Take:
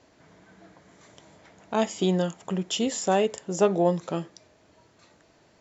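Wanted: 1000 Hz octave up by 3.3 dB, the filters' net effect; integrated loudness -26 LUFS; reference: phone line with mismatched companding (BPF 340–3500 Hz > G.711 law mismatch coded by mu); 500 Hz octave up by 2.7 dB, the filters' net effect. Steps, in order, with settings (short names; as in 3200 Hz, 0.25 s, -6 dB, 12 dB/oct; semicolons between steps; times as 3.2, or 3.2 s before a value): BPF 340–3500 Hz; bell 500 Hz +4 dB; bell 1000 Hz +3 dB; G.711 law mismatch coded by mu; gain -1 dB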